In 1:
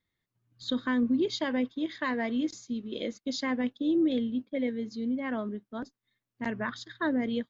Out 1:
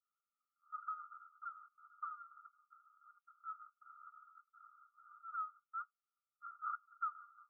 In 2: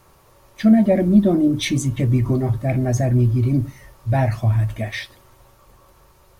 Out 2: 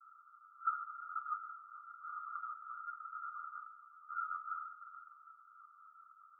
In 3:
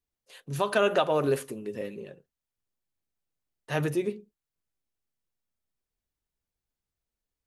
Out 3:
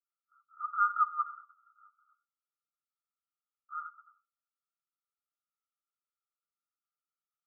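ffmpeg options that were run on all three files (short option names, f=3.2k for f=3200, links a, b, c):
-af "acrusher=bits=5:mode=log:mix=0:aa=0.000001,asuperpass=centerf=1300:order=20:qfactor=5.4,volume=6.5dB"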